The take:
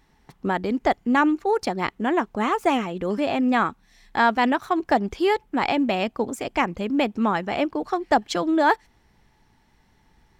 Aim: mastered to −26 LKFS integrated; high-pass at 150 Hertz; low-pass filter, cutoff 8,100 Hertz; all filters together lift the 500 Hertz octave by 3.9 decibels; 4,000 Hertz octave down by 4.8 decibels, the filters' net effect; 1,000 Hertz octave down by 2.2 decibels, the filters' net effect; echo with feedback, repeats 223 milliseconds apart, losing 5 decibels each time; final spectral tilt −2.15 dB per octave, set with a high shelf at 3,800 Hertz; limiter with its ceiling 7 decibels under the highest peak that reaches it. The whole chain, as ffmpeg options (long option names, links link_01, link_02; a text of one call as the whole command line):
ffmpeg -i in.wav -af "highpass=150,lowpass=8100,equalizer=frequency=500:width_type=o:gain=7,equalizer=frequency=1000:width_type=o:gain=-5.5,highshelf=frequency=3800:gain=-4.5,equalizer=frequency=4000:width_type=o:gain=-3.5,alimiter=limit=-13.5dB:level=0:latency=1,aecho=1:1:223|446|669|892|1115|1338|1561:0.562|0.315|0.176|0.0988|0.0553|0.031|0.0173,volume=-3.5dB" out.wav